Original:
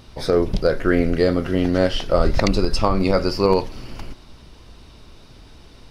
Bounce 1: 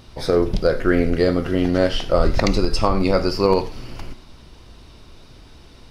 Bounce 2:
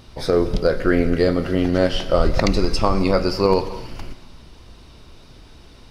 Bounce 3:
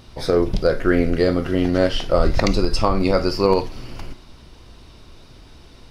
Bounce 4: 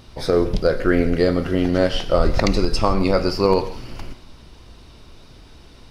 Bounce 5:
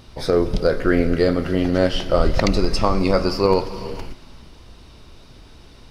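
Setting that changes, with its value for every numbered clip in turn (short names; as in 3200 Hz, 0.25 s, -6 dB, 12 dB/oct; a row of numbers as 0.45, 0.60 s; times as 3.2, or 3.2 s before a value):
non-linear reverb, gate: 120, 290, 80, 190, 500 ms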